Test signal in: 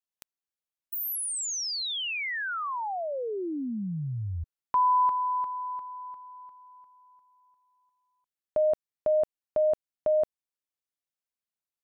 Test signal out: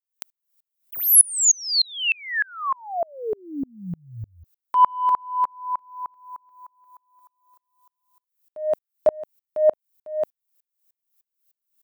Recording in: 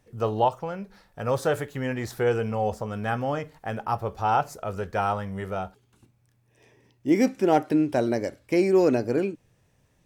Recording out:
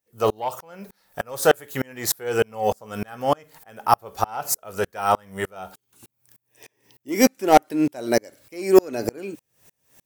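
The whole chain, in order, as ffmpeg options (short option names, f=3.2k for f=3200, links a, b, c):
-af "aemphasis=mode=production:type=bsi,aeval=exprs='0.668*sin(PI/2*2.24*val(0)/0.668)':c=same,aeval=exprs='val(0)*pow(10,-35*if(lt(mod(-3.3*n/s,1),2*abs(-3.3)/1000),1-mod(-3.3*n/s,1)/(2*abs(-3.3)/1000),(mod(-3.3*n/s,1)-2*abs(-3.3)/1000)/(1-2*abs(-3.3)/1000))/20)':c=same,volume=2.5dB"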